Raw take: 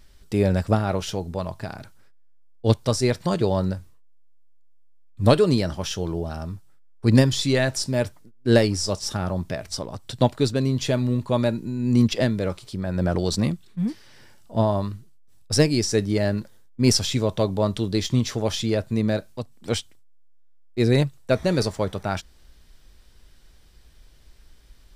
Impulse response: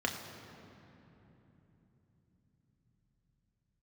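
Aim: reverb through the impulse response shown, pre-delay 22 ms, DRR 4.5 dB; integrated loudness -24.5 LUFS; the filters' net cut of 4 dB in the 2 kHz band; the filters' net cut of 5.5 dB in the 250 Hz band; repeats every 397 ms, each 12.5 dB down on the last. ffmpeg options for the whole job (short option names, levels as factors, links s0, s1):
-filter_complex "[0:a]equalizer=f=250:t=o:g=-7,equalizer=f=2000:t=o:g=-5,aecho=1:1:397|794|1191:0.237|0.0569|0.0137,asplit=2[s0][s1];[1:a]atrim=start_sample=2205,adelay=22[s2];[s1][s2]afir=irnorm=-1:irlink=0,volume=0.282[s3];[s0][s3]amix=inputs=2:normalize=0,volume=0.944"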